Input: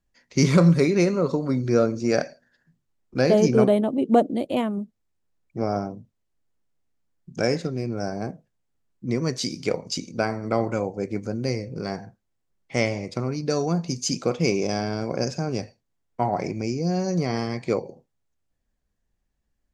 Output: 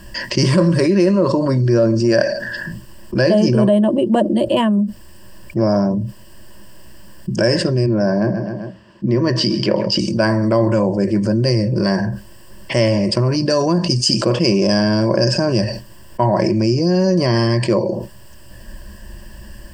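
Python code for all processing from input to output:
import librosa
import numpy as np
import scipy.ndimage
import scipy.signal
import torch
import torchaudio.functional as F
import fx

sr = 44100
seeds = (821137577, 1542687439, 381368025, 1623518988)

y = fx.chain(x, sr, fx.highpass(hz=120.0, slope=12),
    fx.air_absorb(metres=170.0),
    fx.echo_feedback(ms=131, feedback_pct=32, wet_db=-18.0), at=(7.86, 9.99))
y = fx.ripple_eq(y, sr, per_octave=1.3, db=14)
y = fx.env_flatten(y, sr, amount_pct=70)
y = F.gain(torch.from_numpy(y), -1.5).numpy()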